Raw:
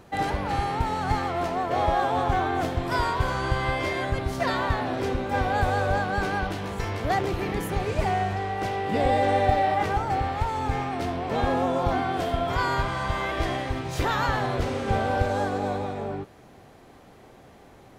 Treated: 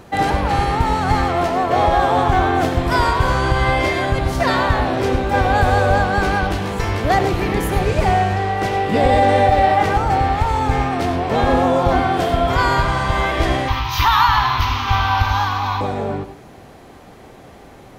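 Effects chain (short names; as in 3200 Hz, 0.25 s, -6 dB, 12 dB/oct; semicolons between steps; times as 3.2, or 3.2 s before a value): 13.68–15.81 EQ curve 110 Hz 0 dB, 170 Hz -17 dB, 280 Hz -10 dB, 550 Hz -24 dB, 1000 Hz +12 dB, 1600 Hz 0 dB, 3100 Hz +8 dB, 6100 Hz +3 dB, 9000 Hz -27 dB, 13000 Hz +11 dB; reverb RT60 0.25 s, pre-delay 85 ms, DRR 10.5 dB; maximiser +12 dB; gain -3.5 dB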